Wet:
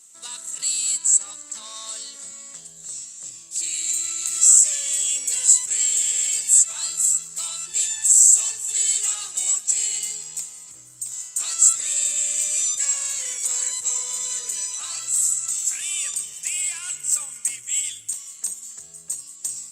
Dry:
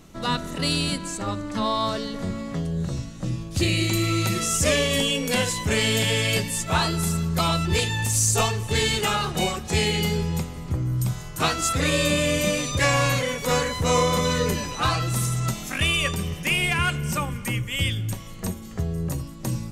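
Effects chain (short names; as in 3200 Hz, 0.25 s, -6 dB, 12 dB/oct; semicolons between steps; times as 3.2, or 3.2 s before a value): in parallel at 0 dB: negative-ratio compressor -25 dBFS, ratio -0.5; on the sum: soft clip -15 dBFS, distortion -16 dB; companded quantiser 8-bit; band-pass 7700 Hz, Q 11; maximiser +18 dB; gain -1 dB; Opus 32 kbps 48000 Hz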